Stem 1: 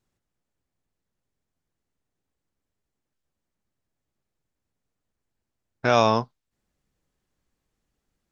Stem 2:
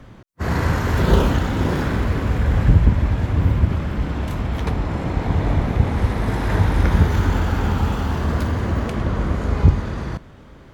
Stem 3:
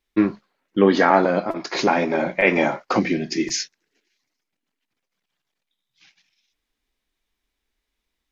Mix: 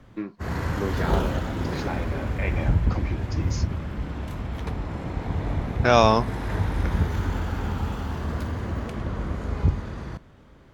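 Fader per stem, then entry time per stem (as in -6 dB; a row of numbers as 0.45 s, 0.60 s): +2.0 dB, -8.0 dB, -14.5 dB; 0.00 s, 0.00 s, 0.00 s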